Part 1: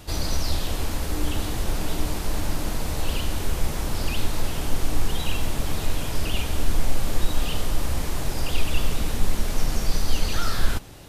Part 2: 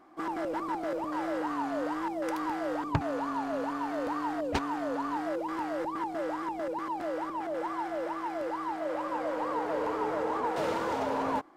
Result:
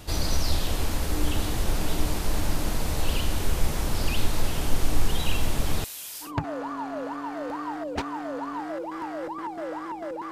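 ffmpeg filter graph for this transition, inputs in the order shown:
-filter_complex "[0:a]asettb=1/sr,asplit=3[s0][s1][s2];[s0]atrim=end=5.844[s3];[s1]atrim=start=5.84:end=6.32,asetpts=PTS-STARTPTS,afade=t=in:d=0.004:c=qsin,afade=t=out:st=0.476:d=0.004:c=qsin,aderivative[s4];[s2]atrim=start=6.316[s5];[s3][s4]acrossfade=d=0.004:c1=hsin:c2=qsin[s6];[s6][s5]acrossfade=d=0.004:c1=qsin:c2=hsin,apad=whole_dur=10.31,atrim=end=10.31,atrim=end=6.32,asetpts=PTS-STARTPTS[s7];[1:a]atrim=start=2.77:end=6.88,asetpts=PTS-STARTPTS[s8];[s7][s8]acrossfade=d=0.12:c1=tri:c2=tri"

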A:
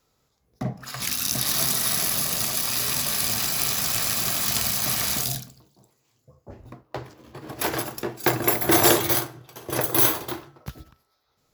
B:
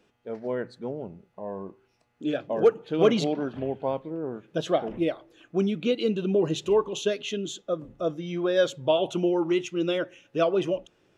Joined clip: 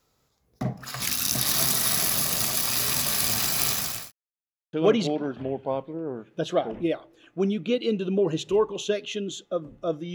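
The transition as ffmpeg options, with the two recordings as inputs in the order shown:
-filter_complex "[0:a]apad=whole_dur=10.14,atrim=end=10.14,asplit=2[s0][s1];[s0]atrim=end=4.12,asetpts=PTS-STARTPTS,afade=t=out:st=3.69:d=0.43[s2];[s1]atrim=start=4.12:end=4.73,asetpts=PTS-STARTPTS,volume=0[s3];[1:a]atrim=start=2.9:end=8.31,asetpts=PTS-STARTPTS,afade=t=in:d=0.004:c=hsin[s4];[s2][s3][s4]concat=n=3:v=0:a=1"

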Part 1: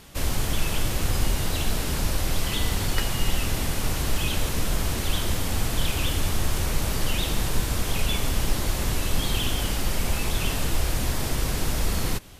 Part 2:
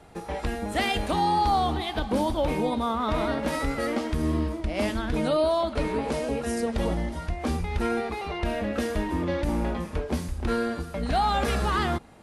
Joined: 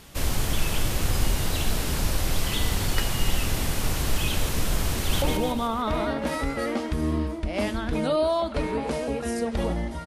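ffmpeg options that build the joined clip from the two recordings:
-filter_complex "[0:a]apad=whole_dur=10.06,atrim=end=10.06,atrim=end=5.222[s0];[1:a]atrim=start=2.428:end=7.27[s1];[s0][s1]acrossfade=d=0.004:c1=hsin:c2=hsin,asplit=2[s2][s3];[s3]afade=t=in:st=4.96:d=0.01,afade=t=out:st=5.22:d=0.01,aecho=0:1:150|300|450|600|750|900|1050:0.630957|0.347027|0.190865|0.104976|0.0577365|0.0317551|0.0174653[s4];[s2][s4]amix=inputs=2:normalize=0"

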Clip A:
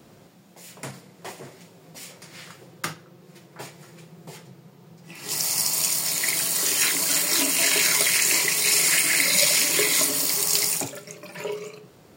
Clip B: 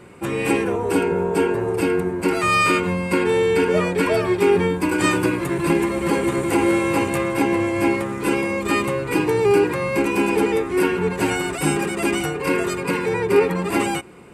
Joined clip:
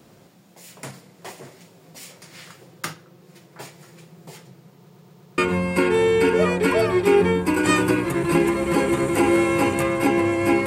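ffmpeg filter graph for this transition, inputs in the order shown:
-filter_complex "[0:a]apad=whole_dur=10.66,atrim=end=10.66,asplit=5[s0][s1][s2][s3][s4];[s0]atrim=end=4.902[s5];[s1]atrim=start=4.778:end=4.902[s6];[s2]atrim=start=4.778:end=4.902[s7];[s3]atrim=start=4.778:end=4.902[s8];[s4]atrim=start=4.778:end=4.902[s9];[1:a]atrim=start=2.728:end=8.01[s10];[s5][s6]acrossfade=d=0.004:c1=hsin:c2=hsin[s11];[s11][s7]acrossfade=d=0.004:c1=hsin:c2=hsin[s12];[s12][s8]acrossfade=d=0.004:c1=hsin:c2=hsin[s13];[s13][s9]acrossfade=d=0.004:c1=hsin:c2=hsin[s14];[s14][s10]acrossfade=d=0.004:c1=hsin:c2=hsin"

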